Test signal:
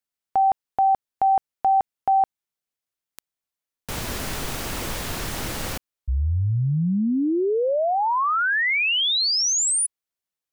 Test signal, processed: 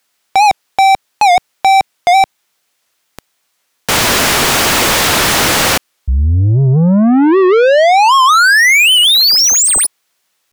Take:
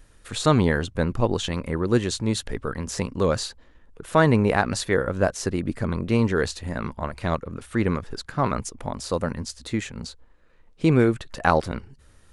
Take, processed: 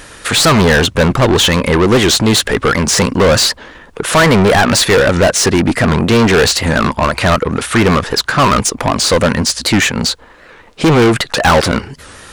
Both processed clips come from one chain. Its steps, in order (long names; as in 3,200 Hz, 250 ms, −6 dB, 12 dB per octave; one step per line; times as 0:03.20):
low-shelf EQ 200 Hz +6 dB
mid-hump overdrive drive 34 dB, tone 7,300 Hz, clips at −1.5 dBFS
wow of a warped record 78 rpm, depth 160 cents